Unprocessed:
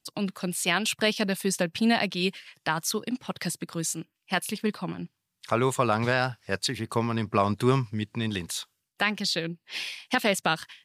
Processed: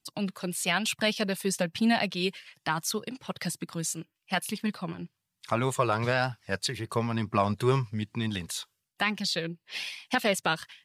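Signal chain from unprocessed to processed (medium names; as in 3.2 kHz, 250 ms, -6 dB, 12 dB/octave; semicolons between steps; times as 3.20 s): flange 1.1 Hz, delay 0.8 ms, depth 1.4 ms, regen -49%; trim +2 dB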